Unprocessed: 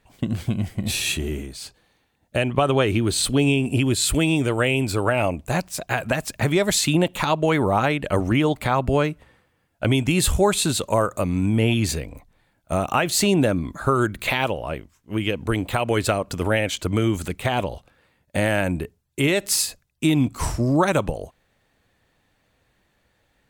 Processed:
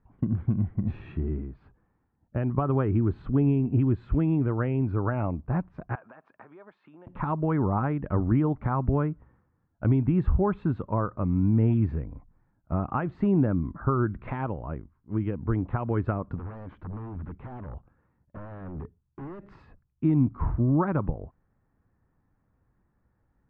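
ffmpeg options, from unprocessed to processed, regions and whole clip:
-filter_complex "[0:a]asettb=1/sr,asplit=3[a][b][c];[a]atrim=end=5.954[d];[b]atrim=start=5.95:end=7.07,asetpts=PTS-STARTPTS,afade=t=in:d=0.004:c=qsin,afade=t=out:st=1.116:d=0.004:c=qsin,bandreject=f=2k:w=12,acompressor=threshold=-30dB:ratio=6:attack=3.2:release=140:knee=1:detection=peak,highpass=580,lowpass=6.1k[e];[c]atrim=start=7.066[f];[d][e]acrossfade=d=0.004:c1=hsin:c2=qsin[g];[g][f]acrossfade=d=0.004:c1=qsin:c2=hsin,asettb=1/sr,asplit=3[h][i][j];[h]atrim=end=16.364[k];[i]atrim=start=16.36:end=19.45,asetpts=PTS-STARTPTS,afade=t=in:d=0.004:c=qsin,afade=t=out:st=3.086:d=0.004:c=qsin,acompressor=threshold=-25dB:ratio=5:attack=3.2:release=140:knee=1:detection=peak,aeval=exprs='0.0398*(abs(mod(val(0)/0.0398+3,4)-2)-1)':c=same[l];[j]atrim=start=19.446[m];[k][l]acrossfade=d=0.004:c1=hsin:c2=qsin[n];[n][m]acrossfade=d=0.004:c1=qsin:c2=hsin,lowpass=f=1.2k:w=0.5412,lowpass=f=1.2k:w=1.3066,equalizer=f=600:w=0.98:g=-12.5"

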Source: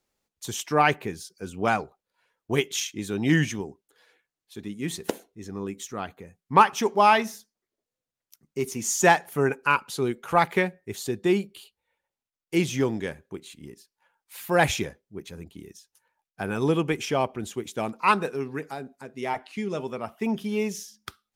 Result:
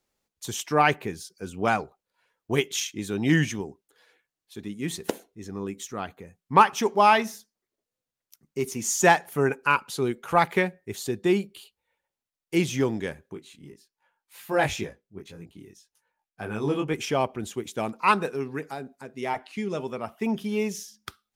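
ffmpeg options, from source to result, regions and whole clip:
-filter_complex "[0:a]asettb=1/sr,asplit=3[a][b][c];[a]atrim=end=13.344[d];[b]atrim=start=13.34:end=16.94,asetpts=PTS-STARTPTS,afade=t=in:d=0.004:c=qsin,afade=t=out:st=3.596:d=0.004:c=qsin,highshelf=f=5.9k:g=-4,flanger=delay=18:depth=3.4:speed=1.9[e];[c]atrim=start=16.936[f];[d][e]acrossfade=d=0.004:c1=hsin:c2=qsin[g];[g][f]acrossfade=d=0.004:c1=qsin:c2=hsin"

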